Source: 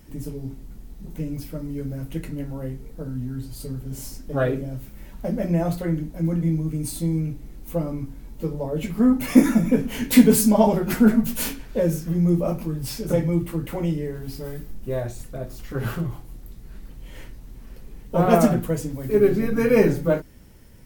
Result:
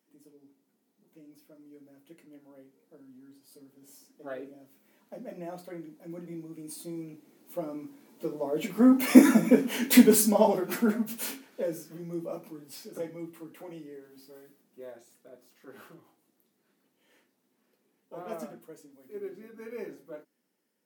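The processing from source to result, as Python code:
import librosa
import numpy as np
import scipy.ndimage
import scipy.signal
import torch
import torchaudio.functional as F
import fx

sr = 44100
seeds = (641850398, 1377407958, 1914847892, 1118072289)

y = fx.doppler_pass(x, sr, speed_mps=8, closest_m=5.6, pass_at_s=9.32)
y = scipy.signal.sosfilt(scipy.signal.butter(4, 240.0, 'highpass', fs=sr, output='sos'), y)
y = y * 10.0 ** (1.5 / 20.0)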